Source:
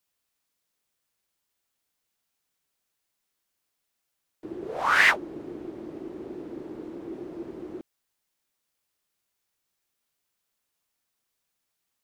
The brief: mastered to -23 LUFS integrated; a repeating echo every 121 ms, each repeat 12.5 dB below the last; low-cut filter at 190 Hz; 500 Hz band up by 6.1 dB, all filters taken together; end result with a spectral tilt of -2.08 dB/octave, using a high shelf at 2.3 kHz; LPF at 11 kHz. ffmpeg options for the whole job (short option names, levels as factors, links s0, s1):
-af "highpass=190,lowpass=11000,equalizer=f=500:t=o:g=8.5,highshelf=f=2300:g=3,aecho=1:1:121|242|363:0.237|0.0569|0.0137,volume=1.33"